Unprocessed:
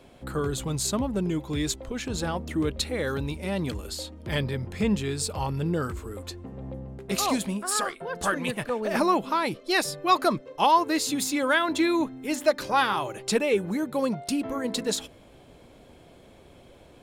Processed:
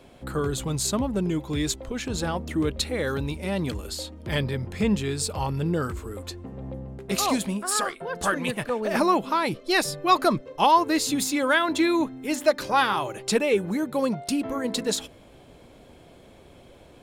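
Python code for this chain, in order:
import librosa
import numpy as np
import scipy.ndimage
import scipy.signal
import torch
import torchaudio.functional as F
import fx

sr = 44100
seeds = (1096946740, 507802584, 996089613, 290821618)

y = fx.low_shelf(x, sr, hz=120.0, db=7.5, at=(9.49, 11.23))
y = y * librosa.db_to_amplitude(1.5)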